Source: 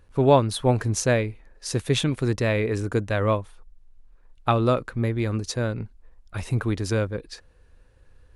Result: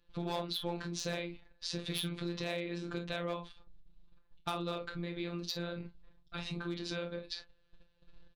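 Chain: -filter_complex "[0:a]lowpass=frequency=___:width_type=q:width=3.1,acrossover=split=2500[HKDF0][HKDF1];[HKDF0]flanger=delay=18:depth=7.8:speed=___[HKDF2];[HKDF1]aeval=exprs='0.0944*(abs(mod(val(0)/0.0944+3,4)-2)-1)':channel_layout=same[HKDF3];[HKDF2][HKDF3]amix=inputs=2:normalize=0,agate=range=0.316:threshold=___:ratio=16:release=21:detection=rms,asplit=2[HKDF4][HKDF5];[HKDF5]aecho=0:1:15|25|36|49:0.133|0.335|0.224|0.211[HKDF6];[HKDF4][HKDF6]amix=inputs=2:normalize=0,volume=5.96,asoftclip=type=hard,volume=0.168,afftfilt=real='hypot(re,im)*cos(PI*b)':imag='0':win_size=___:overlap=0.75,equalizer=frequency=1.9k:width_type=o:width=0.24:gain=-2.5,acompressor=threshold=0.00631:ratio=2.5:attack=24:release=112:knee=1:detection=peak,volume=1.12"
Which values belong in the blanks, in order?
3.8k, 1.5, 0.002, 1024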